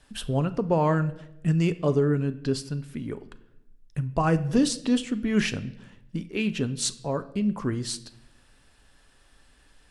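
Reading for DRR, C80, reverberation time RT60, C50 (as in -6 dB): 11.5 dB, 19.0 dB, 0.85 s, 16.5 dB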